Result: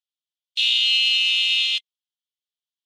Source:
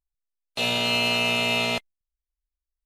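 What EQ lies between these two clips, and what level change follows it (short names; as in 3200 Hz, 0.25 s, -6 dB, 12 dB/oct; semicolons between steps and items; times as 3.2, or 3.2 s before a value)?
ladder band-pass 3500 Hz, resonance 70%; high shelf 2600 Hz +10.5 dB; +6.0 dB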